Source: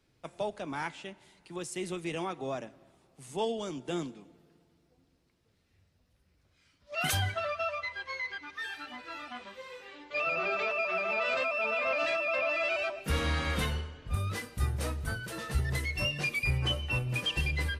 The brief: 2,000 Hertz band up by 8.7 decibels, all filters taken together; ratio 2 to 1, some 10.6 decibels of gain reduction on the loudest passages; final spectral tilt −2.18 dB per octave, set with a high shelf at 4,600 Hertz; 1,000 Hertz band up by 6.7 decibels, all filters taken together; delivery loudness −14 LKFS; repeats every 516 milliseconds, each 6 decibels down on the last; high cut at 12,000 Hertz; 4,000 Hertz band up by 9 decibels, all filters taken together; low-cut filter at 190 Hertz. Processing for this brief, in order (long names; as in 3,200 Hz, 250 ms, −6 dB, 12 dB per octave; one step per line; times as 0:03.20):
high-pass filter 190 Hz
low-pass filter 12,000 Hz
parametric band 1,000 Hz +6 dB
parametric band 2,000 Hz +6.5 dB
parametric band 4,000 Hz +7.5 dB
high-shelf EQ 4,600 Hz +3.5 dB
downward compressor 2 to 1, threshold −40 dBFS
repeating echo 516 ms, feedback 50%, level −6 dB
level +20 dB